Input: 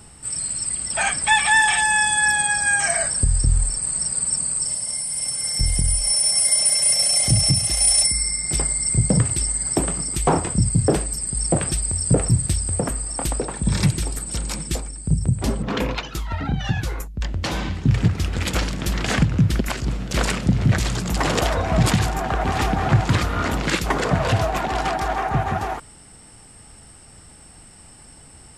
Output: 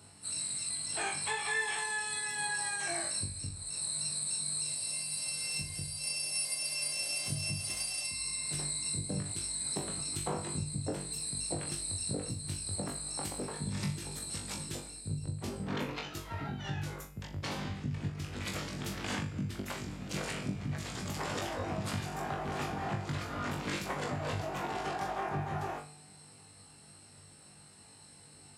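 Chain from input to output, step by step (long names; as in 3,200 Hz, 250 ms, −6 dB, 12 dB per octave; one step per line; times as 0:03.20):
pitch-shifted copies added −12 semitones −7 dB, +3 semitones −13 dB
downward compressor, threshold −21 dBFS, peak gain reduction 11.5 dB
high-pass filter 84 Hz 24 dB per octave
tuned comb filter 150 Hz, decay 1.8 s, mix 60%
on a send: flutter between parallel walls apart 3.5 metres, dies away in 0.32 s
on the sum: level −5 dB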